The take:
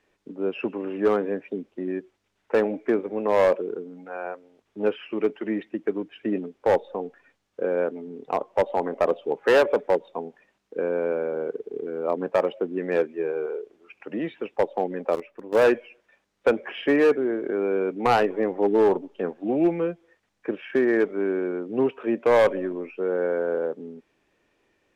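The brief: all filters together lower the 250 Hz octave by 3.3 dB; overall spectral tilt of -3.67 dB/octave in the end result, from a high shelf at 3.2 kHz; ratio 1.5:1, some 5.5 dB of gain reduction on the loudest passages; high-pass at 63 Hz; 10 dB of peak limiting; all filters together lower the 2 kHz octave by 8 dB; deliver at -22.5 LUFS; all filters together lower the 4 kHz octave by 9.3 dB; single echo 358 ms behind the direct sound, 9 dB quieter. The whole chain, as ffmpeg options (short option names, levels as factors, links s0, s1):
-af "highpass=63,equalizer=f=250:t=o:g=-4.5,equalizer=f=2000:t=o:g=-8,highshelf=f=3200:g=-4.5,equalizer=f=4000:t=o:g=-6,acompressor=threshold=0.0251:ratio=1.5,alimiter=level_in=1.26:limit=0.0631:level=0:latency=1,volume=0.794,aecho=1:1:358:0.355,volume=4.73"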